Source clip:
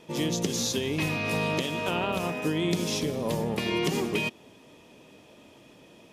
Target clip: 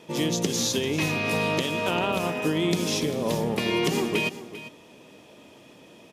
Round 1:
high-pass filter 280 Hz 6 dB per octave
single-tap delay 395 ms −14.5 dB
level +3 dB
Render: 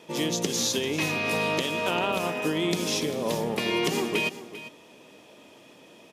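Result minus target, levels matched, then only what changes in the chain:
125 Hz band −4.0 dB
change: high-pass filter 96 Hz 6 dB per octave

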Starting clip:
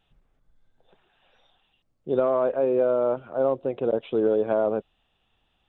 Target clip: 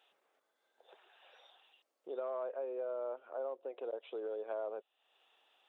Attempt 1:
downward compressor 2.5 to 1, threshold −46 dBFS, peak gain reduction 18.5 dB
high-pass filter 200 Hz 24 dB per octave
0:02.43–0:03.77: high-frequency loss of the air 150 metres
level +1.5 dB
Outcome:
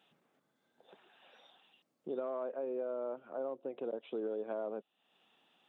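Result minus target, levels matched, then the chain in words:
250 Hz band +8.0 dB
downward compressor 2.5 to 1, threshold −46 dBFS, peak gain reduction 18.5 dB
high-pass filter 420 Hz 24 dB per octave
0:02.43–0:03.77: high-frequency loss of the air 150 metres
level +1.5 dB

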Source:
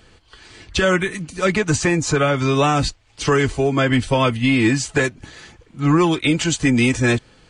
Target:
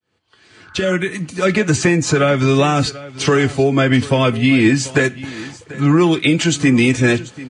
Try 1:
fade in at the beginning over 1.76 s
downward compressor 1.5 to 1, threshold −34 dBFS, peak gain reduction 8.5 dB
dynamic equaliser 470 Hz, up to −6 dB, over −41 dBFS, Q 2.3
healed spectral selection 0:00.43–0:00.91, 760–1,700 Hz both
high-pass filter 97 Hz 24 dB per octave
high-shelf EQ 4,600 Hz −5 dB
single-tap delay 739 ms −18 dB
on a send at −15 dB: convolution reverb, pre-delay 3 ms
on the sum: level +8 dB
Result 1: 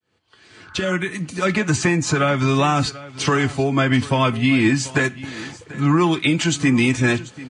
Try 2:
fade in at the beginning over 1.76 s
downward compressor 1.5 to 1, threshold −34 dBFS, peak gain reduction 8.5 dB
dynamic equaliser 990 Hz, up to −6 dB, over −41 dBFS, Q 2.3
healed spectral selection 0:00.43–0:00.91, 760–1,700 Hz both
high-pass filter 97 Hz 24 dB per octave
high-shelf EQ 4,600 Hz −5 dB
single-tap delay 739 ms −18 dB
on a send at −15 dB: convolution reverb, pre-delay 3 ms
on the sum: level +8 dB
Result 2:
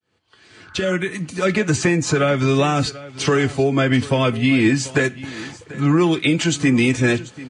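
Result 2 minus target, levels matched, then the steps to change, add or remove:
downward compressor: peak gain reduction +3 dB
change: downward compressor 1.5 to 1, threshold −24.5 dBFS, peak gain reduction 5 dB

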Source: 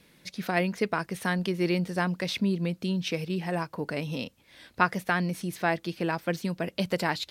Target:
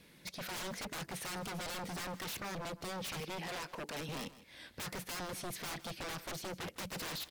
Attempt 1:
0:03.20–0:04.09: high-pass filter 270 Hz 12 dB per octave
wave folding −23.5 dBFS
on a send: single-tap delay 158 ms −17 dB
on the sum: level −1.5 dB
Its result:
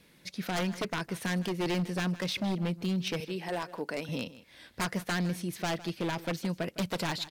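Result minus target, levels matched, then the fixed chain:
wave folding: distortion −26 dB
0:03.20–0:04.09: high-pass filter 270 Hz 12 dB per octave
wave folding −35 dBFS
on a send: single-tap delay 158 ms −17 dB
on the sum: level −1.5 dB

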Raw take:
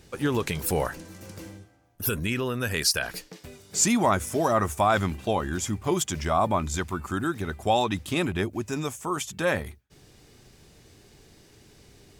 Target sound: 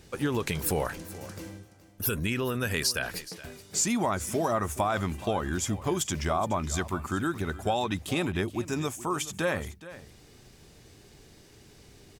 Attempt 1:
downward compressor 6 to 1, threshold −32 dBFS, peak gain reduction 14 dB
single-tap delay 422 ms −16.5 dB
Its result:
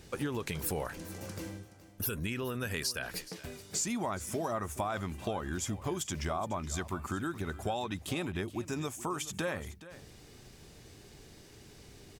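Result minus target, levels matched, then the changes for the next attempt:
downward compressor: peak gain reduction +7 dB
change: downward compressor 6 to 1, threshold −23.5 dBFS, peak gain reduction 7 dB

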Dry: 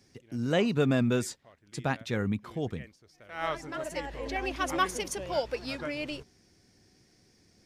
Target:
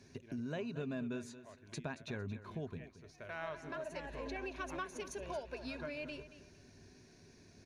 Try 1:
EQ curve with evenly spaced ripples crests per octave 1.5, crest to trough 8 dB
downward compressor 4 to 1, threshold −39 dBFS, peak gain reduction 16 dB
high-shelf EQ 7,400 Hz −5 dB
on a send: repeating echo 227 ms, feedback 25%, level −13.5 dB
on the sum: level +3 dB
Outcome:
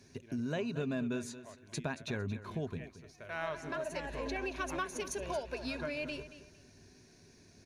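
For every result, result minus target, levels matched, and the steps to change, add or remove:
downward compressor: peak gain reduction −5 dB; 8,000 Hz band +3.0 dB
change: downward compressor 4 to 1, threshold −45.5 dBFS, peak gain reduction 20.5 dB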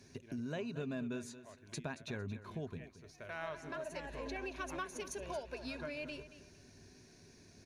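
8,000 Hz band +3.5 dB
change: high-shelf EQ 7,400 Hz −13 dB

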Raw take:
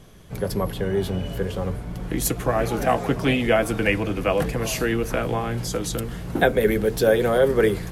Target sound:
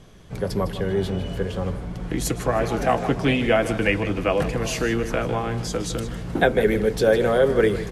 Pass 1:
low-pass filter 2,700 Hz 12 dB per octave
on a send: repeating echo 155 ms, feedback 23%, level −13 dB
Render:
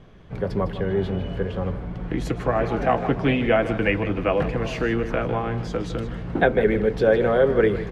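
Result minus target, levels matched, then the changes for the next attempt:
8,000 Hz band −15.5 dB
change: low-pass filter 8,300 Hz 12 dB per octave

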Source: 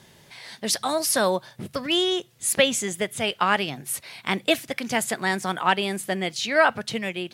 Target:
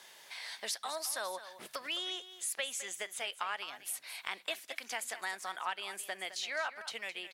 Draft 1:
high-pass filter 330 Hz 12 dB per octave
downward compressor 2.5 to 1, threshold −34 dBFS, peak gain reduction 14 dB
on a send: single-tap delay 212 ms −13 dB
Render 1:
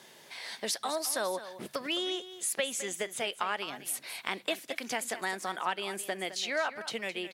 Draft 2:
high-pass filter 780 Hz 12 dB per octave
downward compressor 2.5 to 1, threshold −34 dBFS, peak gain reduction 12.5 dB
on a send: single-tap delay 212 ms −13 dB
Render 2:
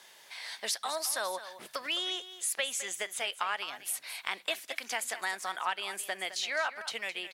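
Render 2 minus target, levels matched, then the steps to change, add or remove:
downward compressor: peak gain reduction −4.5 dB
change: downward compressor 2.5 to 1, threshold −41.5 dBFS, peak gain reduction 17 dB

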